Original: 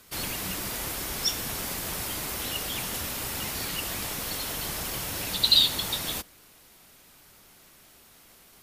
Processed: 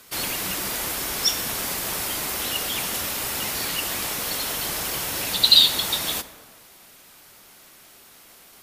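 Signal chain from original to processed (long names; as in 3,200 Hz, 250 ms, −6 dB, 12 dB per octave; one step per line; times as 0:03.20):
low-shelf EQ 180 Hz −9.5 dB
convolution reverb RT60 1.8 s, pre-delay 23 ms, DRR 13 dB
level +5.5 dB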